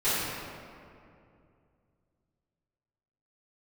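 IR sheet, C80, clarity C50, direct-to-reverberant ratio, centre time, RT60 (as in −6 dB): −1.5 dB, −4.0 dB, −16.5 dB, 153 ms, 2.5 s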